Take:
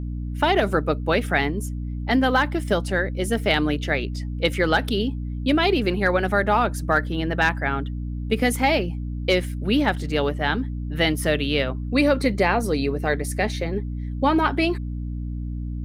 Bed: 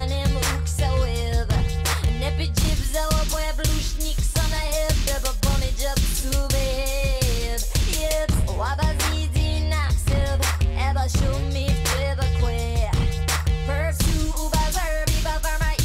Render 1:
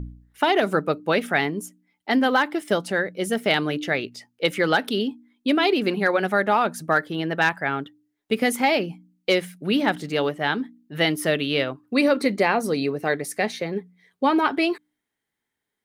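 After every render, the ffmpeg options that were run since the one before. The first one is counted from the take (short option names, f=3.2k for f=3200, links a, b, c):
-af "bandreject=f=60:t=h:w=4,bandreject=f=120:t=h:w=4,bandreject=f=180:t=h:w=4,bandreject=f=240:t=h:w=4,bandreject=f=300:t=h:w=4"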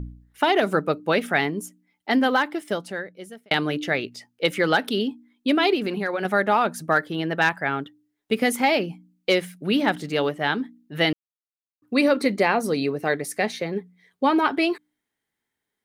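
-filter_complex "[0:a]asettb=1/sr,asplit=3[a][b][c];[a]atrim=end=5.754[d];[b]atrim=start=5.75:end=6.25,asetpts=PTS-STARTPTS,afade=t=in:d=0.004:c=qsin,afade=t=out:st=0.496:d=0.004:c=qsin,acompressor=threshold=-23dB:ratio=3:attack=3.2:release=140:knee=1:detection=peak[e];[c]atrim=start=6.246[f];[d][e]acrossfade=d=0.004:c1=hsin:c2=qsin[g];[g][f]acrossfade=d=0.004:c1=qsin:c2=hsin,asplit=4[h][i][j][k];[h]atrim=end=3.51,asetpts=PTS-STARTPTS,afade=t=out:st=2.22:d=1.29[l];[i]atrim=start=3.51:end=11.13,asetpts=PTS-STARTPTS,afade=t=in:d=0.004:c=hsin,afade=t=out:st=7.616:d=0.004:c=hsin[m];[j]atrim=start=11.13:end=11.82,asetpts=PTS-STARTPTS,volume=0[n];[k]atrim=start=11.82,asetpts=PTS-STARTPTS,afade=t=in:d=0.004:c=hsin[o];[l][m][n][o]concat=n=4:v=0:a=1"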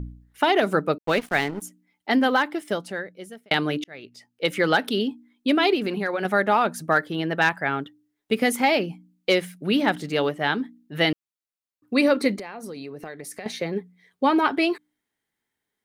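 -filter_complex "[0:a]asettb=1/sr,asplit=3[a][b][c];[a]atrim=end=0.984[d];[b]atrim=start=0.98:end=1.62,asetpts=PTS-STARTPTS,afade=t=in:d=0.004:c=qsin,afade=t=out:st=0.636:d=0.004:c=qsin,aeval=exprs='sgn(val(0))*max(abs(val(0))-0.0188,0)':c=same[e];[c]atrim=start=1.616[f];[d][e]acrossfade=d=0.004:c1=hsin:c2=qsin[g];[g][f]acrossfade=d=0.004:c1=qsin:c2=hsin,asettb=1/sr,asplit=3[h][i][j];[h]atrim=end=12.364[k];[i]atrim=start=12.36:end=13.46,asetpts=PTS-STARTPTS,afade=t=in:d=0.004:c=qsin,afade=t=out:st=1.096:d=0.004:c=qsin,acompressor=threshold=-32dB:ratio=12:attack=3.2:release=140:knee=1:detection=peak[l];[j]atrim=start=13.456[m];[k][l]acrossfade=d=0.004:c1=hsin:c2=qsin[n];[n][m]acrossfade=d=0.004:c1=qsin:c2=hsin,asplit=2[o][p];[o]atrim=end=3.84,asetpts=PTS-STARTPTS,afade=t=out:st=3.836:d=0.004:c=hsin[q];[p]atrim=start=3.84,asetpts=PTS-STARTPTS,afade=t=in:d=0.76[r];[q][r]concat=n=2:v=0:a=1"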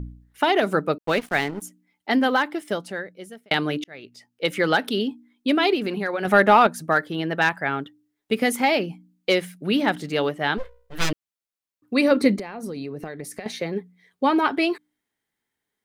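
-filter_complex "[0:a]asettb=1/sr,asplit=3[a][b][c];[a]atrim=end=6.274[d];[b]atrim=start=6.27:end=6.67,asetpts=PTS-STARTPTS,afade=t=in:d=0.004:c=qsin,afade=t=out:st=0.396:d=0.004:c=qsin,acontrast=57[e];[c]atrim=start=6.666[f];[d][e]acrossfade=d=0.004:c1=hsin:c2=qsin[g];[g][f]acrossfade=d=0.004:c1=qsin:c2=hsin,asplit=3[h][i][j];[h]afade=t=out:st=10.57:d=0.02[k];[i]aeval=exprs='abs(val(0))':c=same,afade=t=in:st=10.57:d=0.02,afade=t=out:st=11.1:d=0.02[l];[j]afade=t=in:st=11.1:d=0.02[m];[k][l][m]amix=inputs=3:normalize=0,asettb=1/sr,asplit=3[n][o][p];[n]atrim=end=12.114[q];[o]atrim=start=12.11:end=13.4,asetpts=PTS-STARTPTS,afade=t=in:d=0.004:c=qsin,afade=t=out:st=1.286:d=0.004:c=qsin,lowshelf=f=350:g=8[r];[p]atrim=start=13.396[s];[q][r]acrossfade=d=0.004:c1=hsin:c2=qsin[t];[t][s]acrossfade=d=0.004:c1=qsin:c2=hsin"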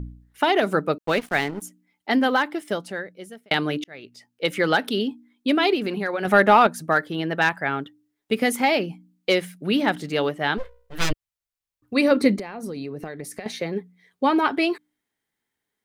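-filter_complex "[0:a]asplit=3[a][b][c];[a]afade=t=out:st=11.1:d=0.02[d];[b]asubboost=boost=10.5:cutoff=82,afade=t=in:st=11.1:d=0.02,afade=t=out:st=11.95:d=0.02[e];[c]afade=t=in:st=11.95:d=0.02[f];[d][e][f]amix=inputs=3:normalize=0"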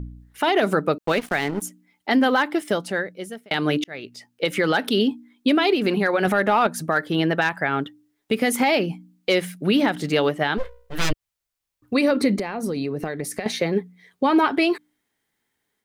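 -af "alimiter=limit=-16dB:level=0:latency=1:release=149,dynaudnorm=f=100:g=3:m=6dB"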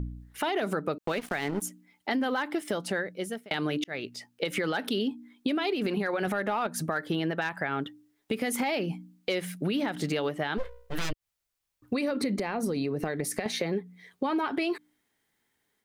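-af "alimiter=limit=-15dB:level=0:latency=1:release=159,acompressor=threshold=-27dB:ratio=3"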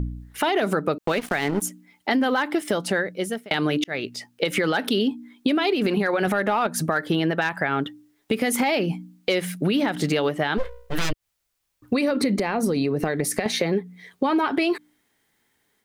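-af "volume=7dB"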